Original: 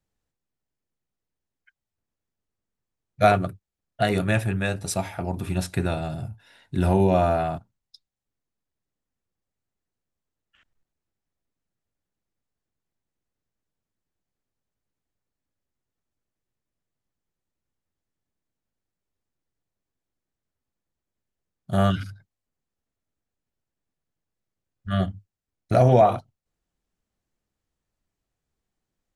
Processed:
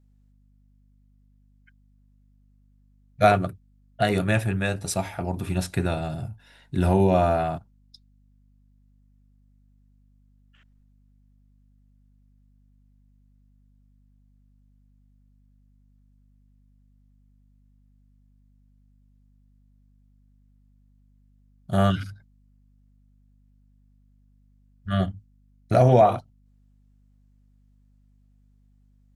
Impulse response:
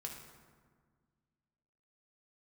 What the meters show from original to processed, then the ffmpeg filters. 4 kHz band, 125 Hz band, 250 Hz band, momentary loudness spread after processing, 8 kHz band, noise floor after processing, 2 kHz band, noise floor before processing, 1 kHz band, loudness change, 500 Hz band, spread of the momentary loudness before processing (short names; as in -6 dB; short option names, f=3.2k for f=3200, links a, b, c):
0.0 dB, 0.0 dB, 0.0 dB, 15 LU, 0.0 dB, -60 dBFS, 0.0 dB, under -85 dBFS, 0.0 dB, 0.0 dB, 0.0 dB, 15 LU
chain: -af "aeval=exprs='val(0)+0.00126*(sin(2*PI*50*n/s)+sin(2*PI*2*50*n/s)/2+sin(2*PI*3*50*n/s)/3+sin(2*PI*4*50*n/s)/4+sin(2*PI*5*50*n/s)/5)':c=same"